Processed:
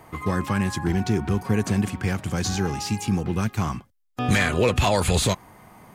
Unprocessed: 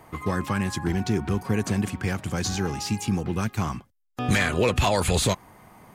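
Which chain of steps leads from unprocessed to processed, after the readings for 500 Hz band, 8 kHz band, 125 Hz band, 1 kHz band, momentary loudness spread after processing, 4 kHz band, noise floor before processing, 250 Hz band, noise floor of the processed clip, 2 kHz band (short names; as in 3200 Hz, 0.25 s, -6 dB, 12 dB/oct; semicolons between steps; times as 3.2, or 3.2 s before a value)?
+1.5 dB, +0.5 dB, +2.5 dB, +1.5 dB, 7 LU, +1.0 dB, -64 dBFS, +2.0 dB, -61 dBFS, +1.0 dB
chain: harmonic-percussive split harmonic +3 dB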